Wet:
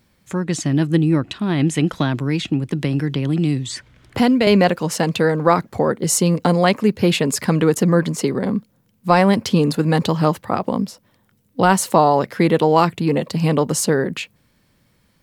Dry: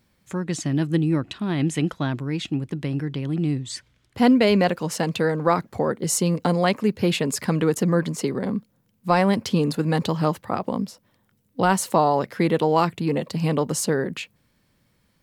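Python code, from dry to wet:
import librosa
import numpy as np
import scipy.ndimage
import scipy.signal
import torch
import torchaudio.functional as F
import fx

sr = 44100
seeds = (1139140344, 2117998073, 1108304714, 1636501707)

y = fx.band_squash(x, sr, depth_pct=70, at=(1.93, 4.47))
y = y * 10.0 ** (5.0 / 20.0)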